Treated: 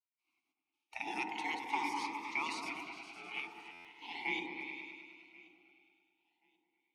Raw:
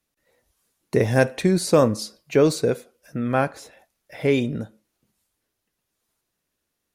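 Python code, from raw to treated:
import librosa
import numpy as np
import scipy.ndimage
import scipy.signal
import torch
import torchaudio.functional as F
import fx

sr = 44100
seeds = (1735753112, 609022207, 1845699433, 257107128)

p1 = fx.echo_pitch(x, sr, ms=509, semitones=3, count=2, db_per_echo=-6.0)
p2 = fx.spec_gate(p1, sr, threshold_db=-20, keep='weak')
p3 = fx.level_steps(p2, sr, step_db=12)
p4 = p2 + F.gain(torch.from_numpy(p3), -2.0).numpy()
p5 = fx.low_shelf(p4, sr, hz=410.0, db=-11.0)
p6 = fx.hum_notches(p5, sr, base_hz=50, count=6)
p7 = p6 + fx.echo_opening(p6, sr, ms=103, hz=750, octaves=1, feedback_pct=70, wet_db=-3, dry=0)
p8 = fx.env_lowpass_down(p7, sr, base_hz=2600.0, full_db=-9.0)
p9 = fx.vowel_filter(p8, sr, vowel='u')
p10 = fx.notch(p9, sr, hz=7400.0, q=12.0)
p11 = fx.echo_feedback(p10, sr, ms=1082, feedback_pct=22, wet_db=-24)
p12 = fx.buffer_glitch(p11, sr, at_s=(3.72,), block=512, repeats=10)
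p13 = fx.notch_cascade(p12, sr, direction='rising', hz=0.39)
y = F.gain(torch.from_numpy(p13), 10.5).numpy()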